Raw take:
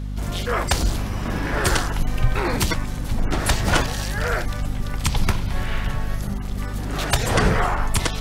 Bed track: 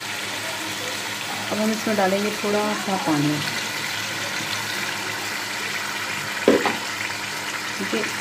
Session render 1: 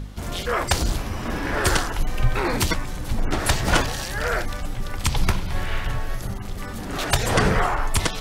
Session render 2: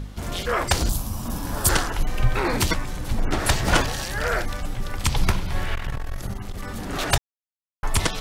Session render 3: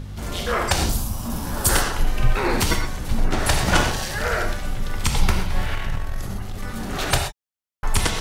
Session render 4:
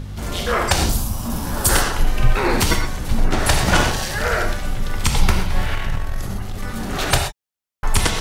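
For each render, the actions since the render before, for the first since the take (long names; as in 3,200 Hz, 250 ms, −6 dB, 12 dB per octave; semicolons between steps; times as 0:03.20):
hum removal 50 Hz, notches 5
0:00.89–0:01.69: drawn EQ curve 230 Hz 0 dB, 390 Hz −11 dB, 550 Hz −7 dB, 1,000 Hz −3 dB, 2,000 Hz −16 dB, 3,400 Hz −4 dB, 5,000 Hz 0 dB, 7,500 Hz +6 dB, 14,000 Hz +13 dB; 0:05.75–0:06.67: saturating transformer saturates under 100 Hz; 0:07.18–0:07.83: silence
reverb whose tail is shaped and stops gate 150 ms flat, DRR 3.5 dB
level +3 dB; brickwall limiter −3 dBFS, peak gain reduction 2.5 dB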